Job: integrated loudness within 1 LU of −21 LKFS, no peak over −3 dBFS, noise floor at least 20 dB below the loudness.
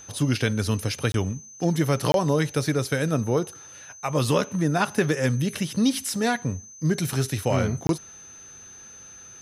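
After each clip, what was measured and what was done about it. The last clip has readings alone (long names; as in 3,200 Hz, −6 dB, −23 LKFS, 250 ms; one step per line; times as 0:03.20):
number of dropouts 3; longest dropout 22 ms; interfering tone 6,200 Hz; level of the tone −43 dBFS; integrated loudness −25.0 LKFS; sample peak −8.0 dBFS; target loudness −21.0 LKFS
→ repair the gap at 0:01.12/0:02.12/0:07.87, 22 ms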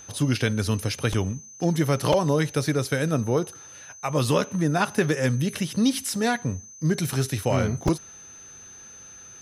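number of dropouts 0; interfering tone 6,200 Hz; level of the tone −43 dBFS
→ notch filter 6,200 Hz, Q 30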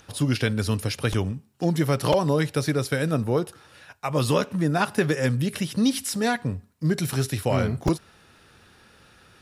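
interfering tone none found; integrated loudness −25.0 LKFS; sample peak −8.0 dBFS; target loudness −21.0 LKFS
→ level +4 dB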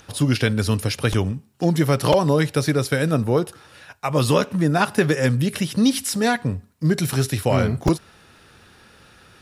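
integrated loudness −21.0 LKFS; sample peak −4.0 dBFS; background noise floor −52 dBFS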